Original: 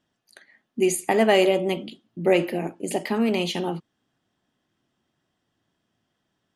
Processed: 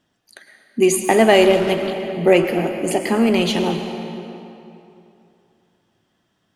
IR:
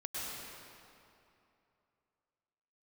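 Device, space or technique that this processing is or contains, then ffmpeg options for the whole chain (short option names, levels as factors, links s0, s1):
saturated reverb return: -filter_complex "[0:a]asplit=2[s0][s1];[1:a]atrim=start_sample=2205[s2];[s1][s2]afir=irnorm=-1:irlink=0,asoftclip=type=tanh:threshold=0.126,volume=0.596[s3];[s0][s3]amix=inputs=2:normalize=0,asettb=1/sr,asplit=3[s4][s5][s6];[s4]atrim=end=2.314[s7];[s5]atrim=start=2.31:end=3.36,asetpts=PTS-STARTPTS,afade=t=in:d=0.004:c=qsin,afade=t=out:st=1.046:d=0.004:c=qsin,bandreject=f=3800:w=6.7[s8];[s6]atrim=start=3.356[s9];[s7][s8]acrossfade=d=0.004:c1=hsin:c2=qsin[s10];[s10][s9]acrossfade=d=0.004:c1=qsin:c2=hsin,volume=1.58"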